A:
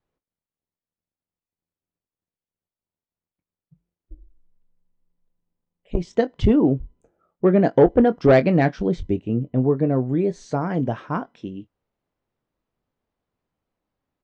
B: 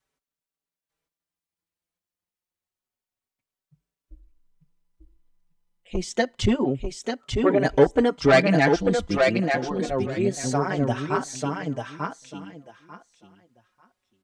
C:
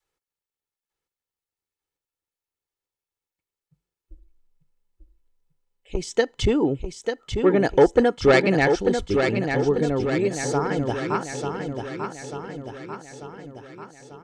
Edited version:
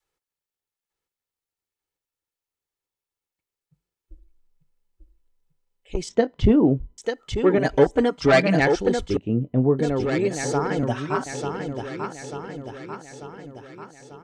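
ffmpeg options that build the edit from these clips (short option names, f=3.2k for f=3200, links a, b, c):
-filter_complex "[0:a]asplit=2[a][b];[1:a]asplit=2[c][d];[2:a]asplit=5[e][f][g][h][i];[e]atrim=end=6.092[j];[a]atrim=start=6.088:end=6.982[k];[f]atrim=start=6.978:end=7.582[l];[c]atrim=start=7.578:end=8.602[m];[g]atrim=start=8.598:end=9.172[n];[b]atrim=start=9.168:end=9.792[o];[h]atrim=start=9.788:end=10.832[p];[d]atrim=start=10.828:end=11.262[q];[i]atrim=start=11.258[r];[j][k]acrossfade=d=0.004:c1=hsin:c2=hsin[s];[s][l]acrossfade=d=0.004:c1=hsin:c2=hsin[t];[t][m]acrossfade=d=0.004:c1=hsin:c2=hsin[u];[u][n]acrossfade=d=0.004:c1=hsin:c2=hsin[v];[v][o]acrossfade=d=0.004:c1=hsin:c2=hsin[w];[w][p]acrossfade=d=0.004:c1=hsin:c2=hsin[x];[x][q]acrossfade=d=0.004:c1=hsin:c2=hsin[y];[y][r]acrossfade=d=0.004:c1=hsin:c2=hsin"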